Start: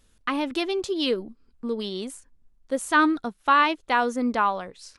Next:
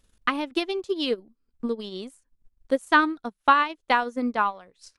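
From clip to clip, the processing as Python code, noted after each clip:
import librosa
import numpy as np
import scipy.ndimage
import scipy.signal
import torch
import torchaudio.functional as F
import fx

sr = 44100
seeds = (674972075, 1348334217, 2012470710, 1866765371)

y = fx.transient(x, sr, attack_db=8, sustain_db=-11)
y = y * librosa.db_to_amplitude(-3.5)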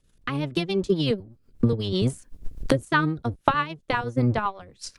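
y = fx.octave_divider(x, sr, octaves=1, level_db=3.0)
y = fx.recorder_agc(y, sr, target_db=-10.0, rise_db_per_s=32.0, max_gain_db=30)
y = fx.rotary(y, sr, hz=8.0)
y = y * librosa.db_to_amplitude(-1.5)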